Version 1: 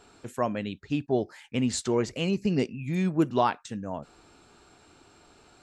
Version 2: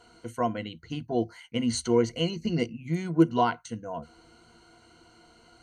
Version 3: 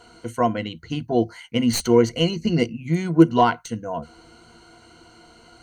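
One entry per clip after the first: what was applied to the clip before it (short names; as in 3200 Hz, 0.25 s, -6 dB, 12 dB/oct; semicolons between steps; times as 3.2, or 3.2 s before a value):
ripple EQ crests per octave 1.9, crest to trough 16 dB; gain -3 dB
tracing distortion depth 0.03 ms; gain +7 dB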